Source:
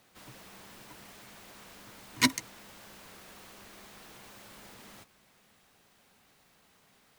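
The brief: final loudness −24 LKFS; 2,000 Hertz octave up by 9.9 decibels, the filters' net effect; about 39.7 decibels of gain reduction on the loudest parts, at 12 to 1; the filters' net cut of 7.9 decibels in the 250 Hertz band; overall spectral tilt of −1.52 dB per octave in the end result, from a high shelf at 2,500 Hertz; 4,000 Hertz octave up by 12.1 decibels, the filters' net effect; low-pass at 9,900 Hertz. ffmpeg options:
ffmpeg -i in.wav -af "lowpass=9900,equalizer=frequency=250:width_type=o:gain=-8.5,equalizer=frequency=2000:width_type=o:gain=6,highshelf=frequency=2500:gain=7.5,equalizer=frequency=4000:width_type=o:gain=6.5,acompressor=threshold=-51dB:ratio=12,volume=29dB" out.wav

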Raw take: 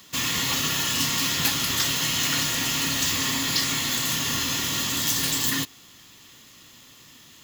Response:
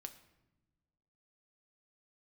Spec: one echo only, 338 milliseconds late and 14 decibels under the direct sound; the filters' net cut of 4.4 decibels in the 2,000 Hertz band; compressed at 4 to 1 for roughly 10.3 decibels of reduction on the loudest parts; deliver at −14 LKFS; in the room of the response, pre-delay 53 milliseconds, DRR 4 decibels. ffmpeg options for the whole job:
-filter_complex "[0:a]equalizer=frequency=2000:width_type=o:gain=-5.5,acompressor=threshold=-33dB:ratio=4,aecho=1:1:338:0.2,asplit=2[link_01][link_02];[1:a]atrim=start_sample=2205,adelay=53[link_03];[link_02][link_03]afir=irnorm=-1:irlink=0,volume=1dB[link_04];[link_01][link_04]amix=inputs=2:normalize=0,volume=16.5dB"

